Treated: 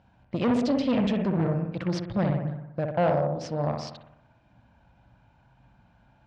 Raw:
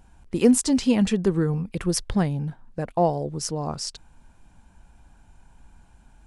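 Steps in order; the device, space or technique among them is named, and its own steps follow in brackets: analogue delay pedal into a guitar amplifier (analogue delay 61 ms, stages 1024, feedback 61%, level -4.5 dB; tube stage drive 20 dB, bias 0.7; speaker cabinet 88–4500 Hz, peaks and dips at 120 Hz +9 dB, 400 Hz -6 dB, 590 Hz +8 dB)

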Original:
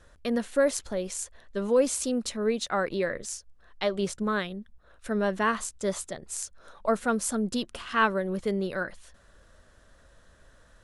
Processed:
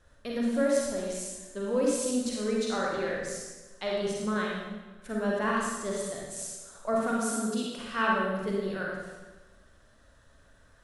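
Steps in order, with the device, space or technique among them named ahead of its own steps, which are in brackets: 6.94–7.78 HPF 190 Hz; Schroeder reverb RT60 1.3 s, combs from 30 ms, DRR 15 dB; bathroom (reverb RT60 1.1 s, pre-delay 37 ms, DRR -3.5 dB); gain -7 dB

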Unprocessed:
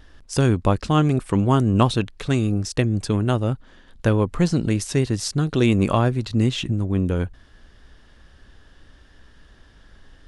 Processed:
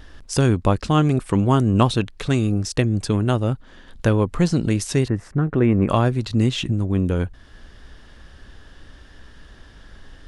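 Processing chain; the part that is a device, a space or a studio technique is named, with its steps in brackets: parallel compression (in parallel at -1 dB: compressor, threshold -36 dBFS, peak gain reduction 22.5 dB); 5.08–5.89 on the sum: EQ curve 1900 Hz 0 dB, 4300 Hz -28 dB, 8200 Hz -22 dB

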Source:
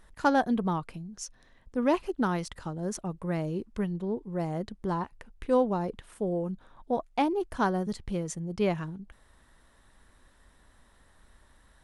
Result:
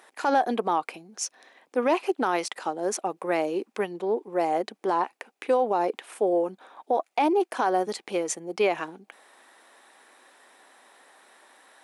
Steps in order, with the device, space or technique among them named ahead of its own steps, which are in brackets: laptop speaker (HPF 330 Hz 24 dB/oct; bell 770 Hz +7 dB 0.24 oct; bell 2400 Hz +6 dB 0.32 oct; limiter -22.5 dBFS, peak gain reduction 12.5 dB); gain +8.5 dB

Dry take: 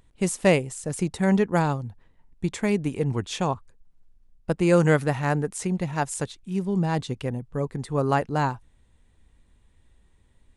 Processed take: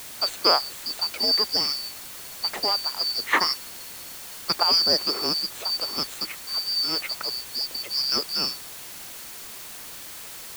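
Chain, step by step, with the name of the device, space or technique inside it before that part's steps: 3.33–4.63 bell 2300 Hz +12.5 dB 1.9 oct; split-band scrambled radio (four-band scrambler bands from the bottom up 2341; BPF 320–2800 Hz; white noise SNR 12 dB); gain +7.5 dB

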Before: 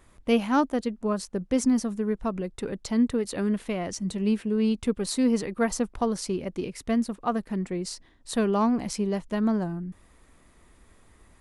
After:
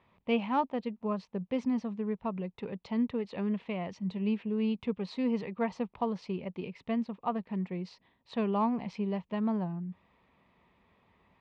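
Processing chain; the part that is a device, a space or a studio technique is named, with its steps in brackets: guitar cabinet (speaker cabinet 110–3600 Hz, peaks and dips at 180 Hz +4 dB, 310 Hz -8 dB, 930 Hz +6 dB, 1500 Hz -8 dB, 2500 Hz +4 dB); gain -6 dB

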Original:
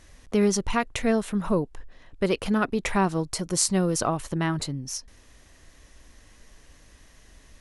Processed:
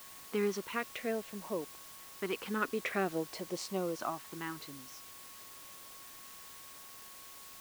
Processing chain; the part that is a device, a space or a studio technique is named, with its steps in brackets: shortwave radio (BPF 340–3000 Hz; tremolo 0.33 Hz, depth 48%; LFO notch saw up 0.5 Hz 450–2100 Hz; whine 1100 Hz -55 dBFS; white noise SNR 12 dB); gain -4 dB

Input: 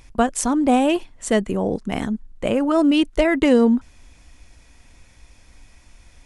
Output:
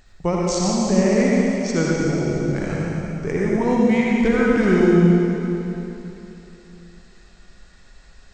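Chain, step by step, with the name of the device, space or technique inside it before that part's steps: slowed and reverbed (varispeed -25%; reverb RT60 3.1 s, pre-delay 59 ms, DRR -4.5 dB); gain -4.5 dB

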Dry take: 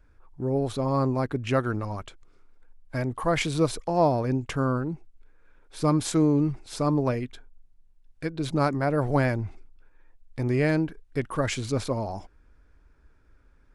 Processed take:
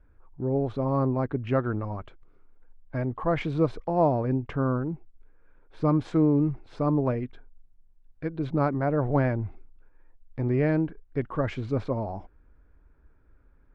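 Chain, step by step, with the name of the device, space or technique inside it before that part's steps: phone in a pocket (LPF 3100 Hz 12 dB/oct; high shelf 2200 Hz -11.5 dB)

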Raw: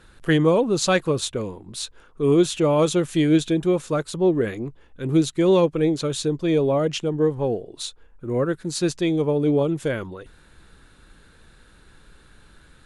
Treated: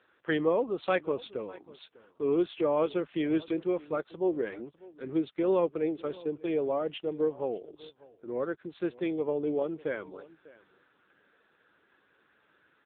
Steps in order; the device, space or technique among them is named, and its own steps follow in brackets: 5.43–6.84 gate -27 dBFS, range -25 dB; satellite phone (BPF 330–3300 Hz; echo 0.599 s -21 dB; gain -6 dB; AMR-NB 6.7 kbps 8000 Hz)

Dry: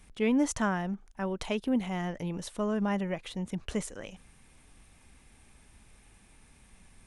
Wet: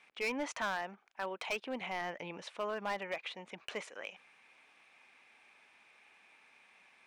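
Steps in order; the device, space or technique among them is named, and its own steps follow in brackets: megaphone (BPF 660–3500 Hz; bell 2400 Hz +7 dB 0.3 oct; hard clip -31 dBFS, distortion -10 dB); 1.81–2.42 low shelf 210 Hz +9.5 dB; gain +1 dB

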